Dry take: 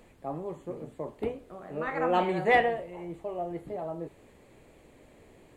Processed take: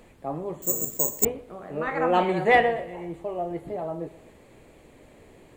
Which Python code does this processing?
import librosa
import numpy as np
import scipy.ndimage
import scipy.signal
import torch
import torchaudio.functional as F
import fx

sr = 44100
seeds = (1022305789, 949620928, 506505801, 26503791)

y = fx.echo_feedback(x, sr, ms=124, feedback_pct=48, wet_db=-19.0)
y = fx.resample_bad(y, sr, factor=6, down='none', up='zero_stuff', at=(0.62, 1.25))
y = y * 10.0 ** (4.0 / 20.0)